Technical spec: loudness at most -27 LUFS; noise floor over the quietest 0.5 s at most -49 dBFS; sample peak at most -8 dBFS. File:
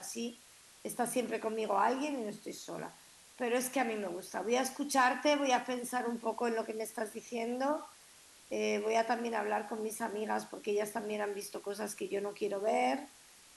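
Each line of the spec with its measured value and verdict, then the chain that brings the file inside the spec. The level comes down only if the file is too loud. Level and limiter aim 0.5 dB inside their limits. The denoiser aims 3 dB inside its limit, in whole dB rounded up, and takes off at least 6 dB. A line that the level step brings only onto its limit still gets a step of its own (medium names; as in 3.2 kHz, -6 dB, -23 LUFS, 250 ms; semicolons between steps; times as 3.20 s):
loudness -35.0 LUFS: pass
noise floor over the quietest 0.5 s -59 dBFS: pass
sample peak -16.0 dBFS: pass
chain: none needed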